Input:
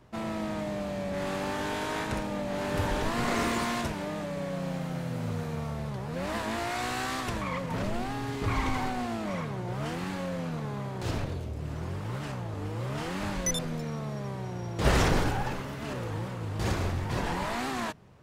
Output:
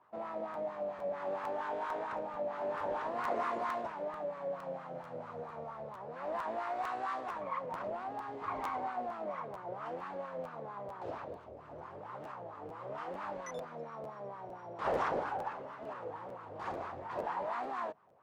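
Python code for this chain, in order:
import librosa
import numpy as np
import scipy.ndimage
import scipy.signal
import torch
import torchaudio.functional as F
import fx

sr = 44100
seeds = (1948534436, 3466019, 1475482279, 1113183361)

y = fx.vibrato(x, sr, rate_hz=10.0, depth_cents=12.0)
y = fx.wah_lfo(y, sr, hz=4.4, low_hz=540.0, high_hz=1200.0, q=3.2)
y = fx.buffer_crackle(y, sr, first_s=0.53, period_s=0.45, block=512, kind='repeat')
y = y * 10.0 ** (2.0 / 20.0)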